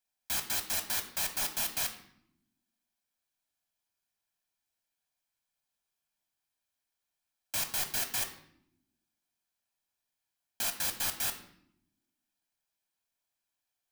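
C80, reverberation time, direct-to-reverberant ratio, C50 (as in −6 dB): 13.5 dB, 0.80 s, 5.5 dB, 10.5 dB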